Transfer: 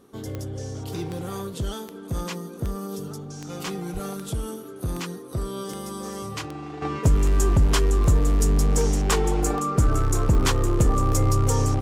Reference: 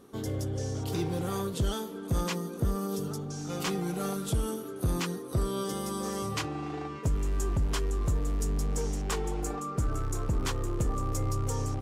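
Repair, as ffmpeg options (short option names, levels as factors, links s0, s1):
-filter_complex "[0:a]adeclick=t=4,asplit=3[s0][s1][s2];[s0]afade=t=out:st=3.93:d=0.02[s3];[s1]highpass=f=140:w=0.5412,highpass=f=140:w=1.3066,afade=t=in:st=3.93:d=0.02,afade=t=out:st=4.05:d=0.02[s4];[s2]afade=t=in:st=4.05:d=0.02[s5];[s3][s4][s5]amix=inputs=3:normalize=0,asetnsamples=n=441:p=0,asendcmd='6.82 volume volume -10dB',volume=1"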